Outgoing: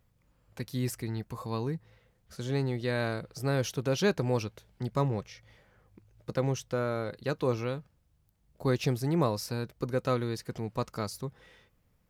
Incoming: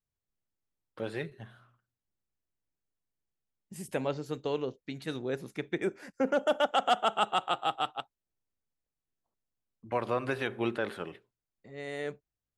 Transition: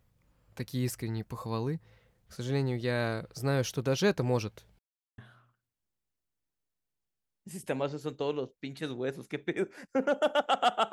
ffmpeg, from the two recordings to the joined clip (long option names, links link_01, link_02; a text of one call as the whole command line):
ffmpeg -i cue0.wav -i cue1.wav -filter_complex "[0:a]apad=whole_dur=10.92,atrim=end=10.92,asplit=2[link_01][link_02];[link_01]atrim=end=4.79,asetpts=PTS-STARTPTS,afade=type=out:start_time=4.786:duration=0.004:curve=hsin[link_03];[link_02]atrim=start=4.79:end=5.18,asetpts=PTS-STARTPTS,volume=0[link_04];[1:a]atrim=start=1.43:end=7.17,asetpts=PTS-STARTPTS,afade=type=in:duration=0.004:curve=hsin[link_05];[link_03][link_04][link_05]concat=n=3:v=0:a=1" out.wav